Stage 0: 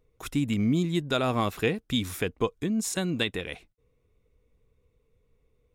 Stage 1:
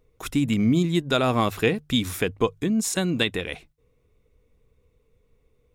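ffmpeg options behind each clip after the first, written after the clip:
-af "bandreject=f=50:t=h:w=6,bandreject=f=100:t=h:w=6,bandreject=f=150:t=h:w=6,volume=4.5dB"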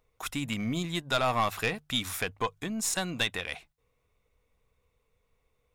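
-af "lowshelf=f=550:t=q:w=1.5:g=-8.5,aeval=exprs='(tanh(7.08*val(0)+0.3)-tanh(0.3))/7.08':c=same,volume=-1dB"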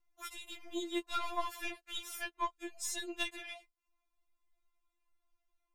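-af "afftfilt=real='re*4*eq(mod(b,16),0)':imag='im*4*eq(mod(b,16),0)':win_size=2048:overlap=0.75,volume=-6.5dB"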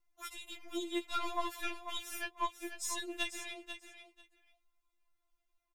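-af "aecho=1:1:492|984:0.335|0.0536"

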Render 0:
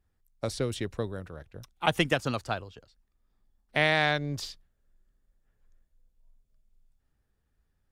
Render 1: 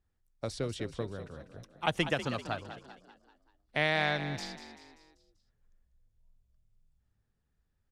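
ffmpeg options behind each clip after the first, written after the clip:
-filter_complex "[0:a]lowpass=9.1k,asplit=2[a][b];[b]asplit=5[c][d][e][f][g];[c]adelay=194,afreqshift=42,volume=-11.5dB[h];[d]adelay=388,afreqshift=84,volume=-17.7dB[i];[e]adelay=582,afreqshift=126,volume=-23.9dB[j];[f]adelay=776,afreqshift=168,volume=-30.1dB[k];[g]adelay=970,afreqshift=210,volume=-36.3dB[l];[h][i][j][k][l]amix=inputs=5:normalize=0[m];[a][m]amix=inputs=2:normalize=0,volume=-4.5dB"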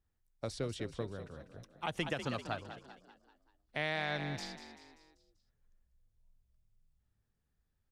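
-af "alimiter=limit=-18.5dB:level=0:latency=1:release=95,volume=-3dB"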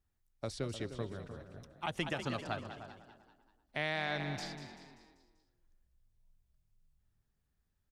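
-filter_complex "[0:a]bandreject=f=490:w=12,asplit=2[a][b];[b]adelay=304,lowpass=f=1.4k:p=1,volume=-10.5dB,asplit=2[c][d];[d]adelay=304,lowpass=f=1.4k:p=1,volume=0.17[e];[a][c][e]amix=inputs=3:normalize=0"

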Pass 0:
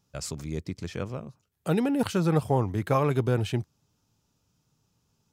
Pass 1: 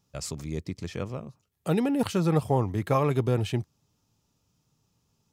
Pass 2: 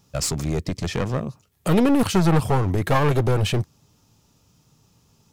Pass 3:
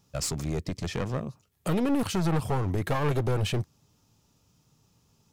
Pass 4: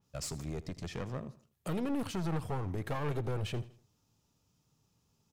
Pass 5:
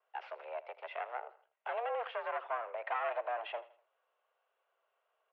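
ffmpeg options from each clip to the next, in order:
-af "bandreject=f=1.5k:w=11"
-filter_complex "[0:a]asplit=2[a][b];[b]alimiter=limit=-23dB:level=0:latency=1:release=115,volume=-0.5dB[c];[a][c]amix=inputs=2:normalize=0,aeval=exprs='clip(val(0),-1,0.0422)':c=same,volume=6.5dB"
-af "alimiter=limit=-11dB:level=0:latency=1:release=111,volume=-6dB"
-af "aecho=1:1:81|162|243:0.133|0.0493|0.0183,adynamicequalizer=threshold=0.00501:dfrequency=3700:dqfactor=0.7:tfrequency=3700:tqfactor=0.7:attack=5:release=100:ratio=0.375:range=2:mode=cutabove:tftype=highshelf,volume=-8.5dB"
-af "highpass=f=340:t=q:w=0.5412,highpass=f=340:t=q:w=1.307,lowpass=f=2.6k:t=q:w=0.5176,lowpass=f=2.6k:t=q:w=0.7071,lowpass=f=2.6k:t=q:w=1.932,afreqshift=230,volume=3dB"

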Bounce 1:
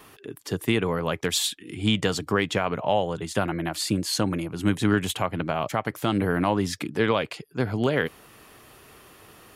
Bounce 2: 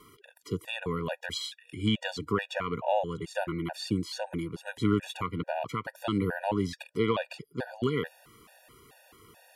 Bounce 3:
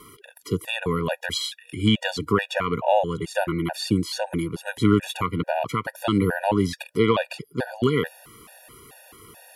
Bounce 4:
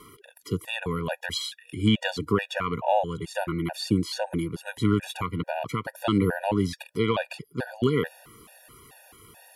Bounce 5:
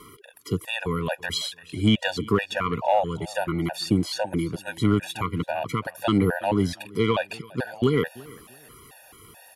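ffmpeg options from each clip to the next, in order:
-filter_complex "[0:a]acrossover=split=5300[a][b];[b]acompressor=threshold=-44dB:ratio=4:attack=1:release=60[c];[a][c]amix=inputs=2:normalize=0,afftfilt=real='re*gt(sin(2*PI*2.3*pts/sr)*(1-2*mod(floor(b*sr/1024/480),2)),0)':imag='im*gt(sin(2*PI*2.3*pts/sr)*(1-2*mod(floor(b*sr/1024/480),2)),0)':win_size=1024:overlap=0.75,volume=-3.5dB"
-af "equalizer=f=11k:t=o:w=0.28:g=8.5,volume=7.5dB"
-af "aphaser=in_gain=1:out_gain=1:delay=1.3:decay=0.25:speed=0.49:type=sinusoidal,volume=-4dB"
-filter_complex "[0:a]aecho=1:1:335|670:0.075|0.0195,asplit=2[a][b];[b]asoftclip=type=hard:threshold=-18.5dB,volume=-10dB[c];[a][c]amix=inputs=2:normalize=0"

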